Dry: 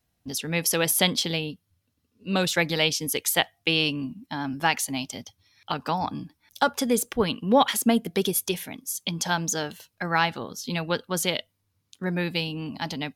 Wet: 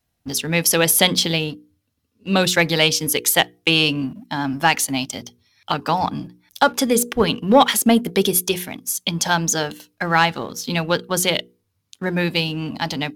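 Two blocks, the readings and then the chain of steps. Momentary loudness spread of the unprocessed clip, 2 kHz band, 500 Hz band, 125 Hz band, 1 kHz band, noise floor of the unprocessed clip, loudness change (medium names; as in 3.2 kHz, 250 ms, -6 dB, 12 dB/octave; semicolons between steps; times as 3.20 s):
12 LU, +6.5 dB, +6.5 dB, +6.5 dB, +6.5 dB, -75 dBFS, +6.5 dB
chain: waveshaping leveller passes 1; hum notches 60/120/180/240/300/360/420/480 Hz; trim +3.5 dB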